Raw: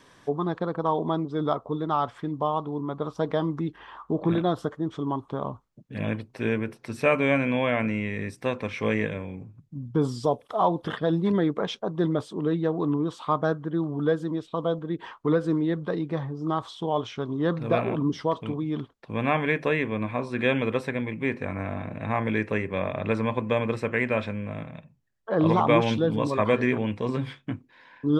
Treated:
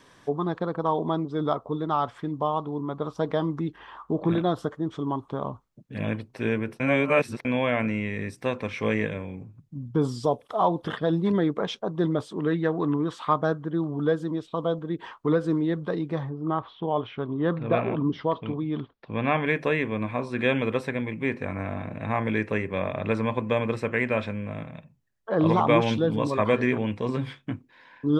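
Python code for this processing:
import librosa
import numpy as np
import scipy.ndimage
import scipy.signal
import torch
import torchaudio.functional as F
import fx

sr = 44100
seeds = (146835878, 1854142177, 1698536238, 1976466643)

y = fx.peak_eq(x, sr, hz=1800.0, db=9.5, octaves=0.86, at=(12.31, 13.34))
y = fx.lowpass(y, sr, hz=fx.line((16.29, 2600.0), (19.45, 5000.0)), slope=24, at=(16.29, 19.45), fade=0.02)
y = fx.edit(y, sr, fx.reverse_span(start_s=6.8, length_s=0.65), tone=tone)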